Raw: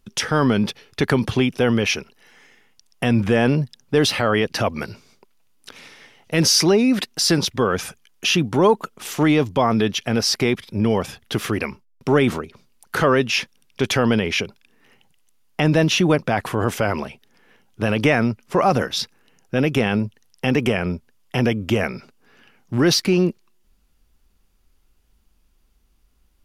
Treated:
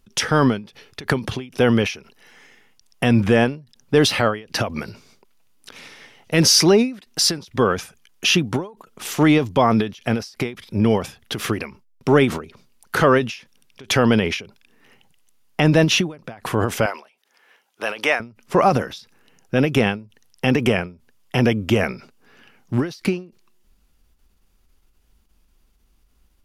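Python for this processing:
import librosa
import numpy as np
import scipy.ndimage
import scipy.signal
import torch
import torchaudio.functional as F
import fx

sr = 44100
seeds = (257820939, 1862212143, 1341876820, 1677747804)

y = fx.highpass(x, sr, hz=640.0, slope=12, at=(16.86, 18.2))
y = fx.end_taper(y, sr, db_per_s=160.0)
y = F.gain(torch.from_numpy(y), 2.0).numpy()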